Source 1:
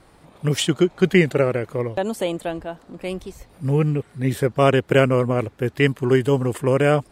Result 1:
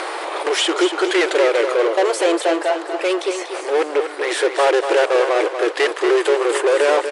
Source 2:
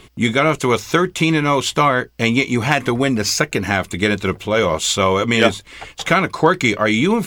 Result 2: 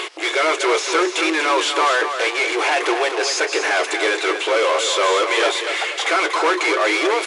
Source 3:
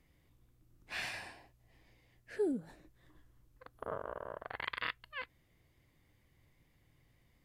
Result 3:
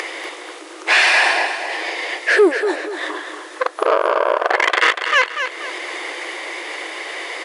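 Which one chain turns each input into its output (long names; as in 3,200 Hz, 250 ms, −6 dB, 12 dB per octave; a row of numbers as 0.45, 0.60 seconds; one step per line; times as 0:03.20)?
upward compression, threshold −33 dBFS
hard clipping −14.5 dBFS
mid-hump overdrive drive 25 dB, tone 3,100 Hz, clips at −14.5 dBFS
linear-phase brick-wall band-pass 310–11,000 Hz
repeating echo 240 ms, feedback 37%, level −8 dB
loudness normalisation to −18 LKFS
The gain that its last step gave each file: +4.5, +1.5, +12.5 decibels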